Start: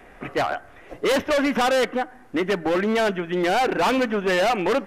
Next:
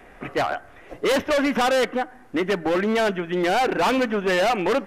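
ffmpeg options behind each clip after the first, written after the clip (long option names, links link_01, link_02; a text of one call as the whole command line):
ffmpeg -i in.wav -af anull out.wav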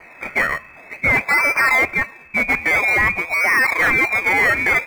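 ffmpeg -i in.wav -filter_complex "[0:a]lowpass=frequency=2200:width_type=q:width=0.5098,lowpass=frequency=2200:width_type=q:width=0.6013,lowpass=frequency=2200:width_type=q:width=0.9,lowpass=frequency=2200:width_type=q:width=2.563,afreqshift=-2600,asplit=2[link_01][link_02];[link_02]acrusher=samples=24:mix=1:aa=0.000001:lfo=1:lforange=24:lforate=0.5,volume=-10dB[link_03];[link_01][link_03]amix=inputs=2:normalize=0,volume=4dB" out.wav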